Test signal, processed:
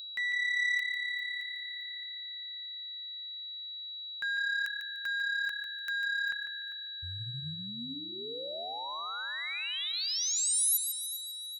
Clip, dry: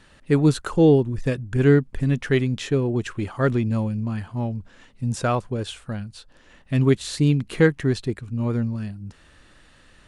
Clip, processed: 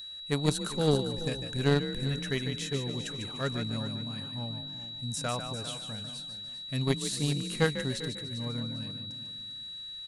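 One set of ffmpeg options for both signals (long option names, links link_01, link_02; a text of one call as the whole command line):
ffmpeg -i in.wav -filter_complex "[0:a]equalizer=frequency=340:width_type=o:width=0.22:gain=-12,asplit=2[link_01][link_02];[link_02]asplit=4[link_03][link_04][link_05][link_06];[link_03]adelay=148,afreqshift=35,volume=-8dB[link_07];[link_04]adelay=296,afreqshift=70,volume=-17.9dB[link_08];[link_05]adelay=444,afreqshift=105,volume=-27.8dB[link_09];[link_06]adelay=592,afreqshift=140,volume=-37.7dB[link_10];[link_07][link_08][link_09][link_10]amix=inputs=4:normalize=0[link_11];[link_01][link_11]amix=inputs=2:normalize=0,aeval=exprs='val(0)+0.02*sin(2*PI*3900*n/s)':channel_layout=same,asplit=2[link_12][link_13];[link_13]aecho=0:1:398|796|1194:0.237|0.0664|0.0186[link_14];[link_12][link_14]amix=inputs=2:normalize=0,aeval=exprs='0.631*(cos(1*acos(clip(val(0)/0.631,-1,1)))-cos(1*PI/2))+0.112*(cos(3*acos(clip(val(0)/0.631,-1,1)))-cos(3*PI/2))':channel_layout=same,aemphasis=mode=production:type=75kf,volume=-6dB" out.wav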